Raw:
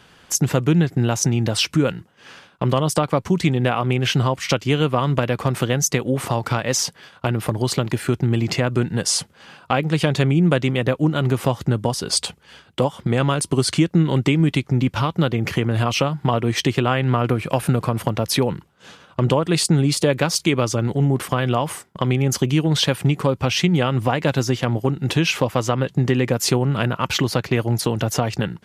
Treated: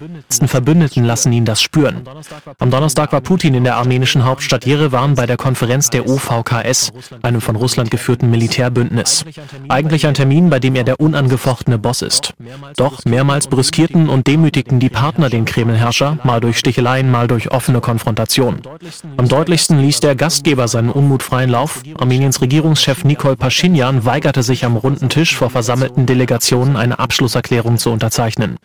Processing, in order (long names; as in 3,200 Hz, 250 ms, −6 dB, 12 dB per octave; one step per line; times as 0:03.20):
leveller curve on the samples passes 2
backwards echo 662 ms −20 dB
level +1 dB